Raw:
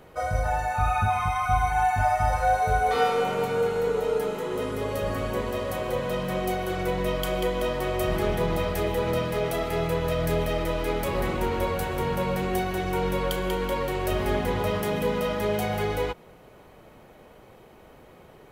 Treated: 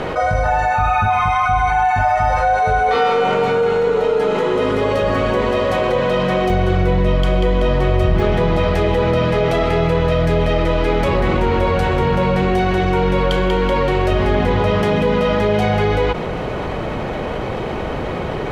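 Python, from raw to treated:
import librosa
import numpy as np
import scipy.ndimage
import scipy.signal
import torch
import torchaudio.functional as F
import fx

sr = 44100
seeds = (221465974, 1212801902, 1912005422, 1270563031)

y = scipy.signal.sosfilt(scipy.signal.butter(2, 4400.0, 'lowpass', fs=sr, output='sos'), x)
y = fx.peak_eq(y, sr, hz=66.0, db=fx.steps((0.0, -4.5), (6.5, 13.0), (8.2, 3.0)), octaves=2.8)
y = fx.env_flatten(y, sr, amount_pct=70)
y = y * 10.0 ** (2.5 / 20.0)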